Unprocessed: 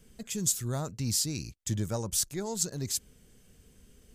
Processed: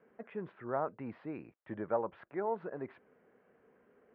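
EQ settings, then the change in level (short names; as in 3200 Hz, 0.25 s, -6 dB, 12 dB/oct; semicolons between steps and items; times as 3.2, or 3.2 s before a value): HPF 570 Hz 12 dB/oct; Bessel low-pass 1100 Hz, order 8; +8.0 dB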